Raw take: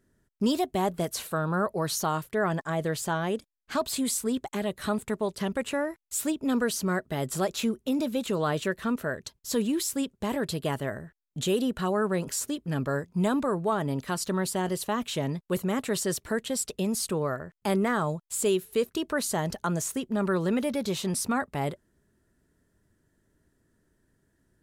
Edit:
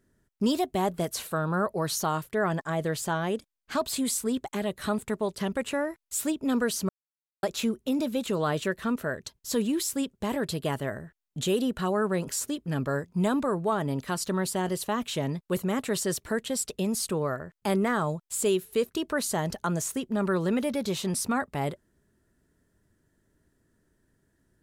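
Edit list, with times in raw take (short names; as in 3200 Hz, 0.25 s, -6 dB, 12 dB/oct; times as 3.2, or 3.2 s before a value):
6.89–7.43 mute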